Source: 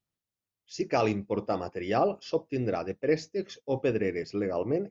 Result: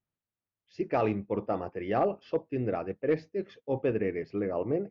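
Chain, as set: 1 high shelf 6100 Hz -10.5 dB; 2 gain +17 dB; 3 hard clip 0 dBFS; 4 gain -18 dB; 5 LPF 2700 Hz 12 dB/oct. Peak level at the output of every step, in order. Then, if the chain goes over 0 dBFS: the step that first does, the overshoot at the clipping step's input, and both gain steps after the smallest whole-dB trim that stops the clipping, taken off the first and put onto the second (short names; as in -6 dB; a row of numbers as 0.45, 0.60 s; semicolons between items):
-13.5, +3.5, 0.0, -18.0, -17.5 dBFS; step 2, 3.5 dB; step 2 +13 dB, step 4 -14 dB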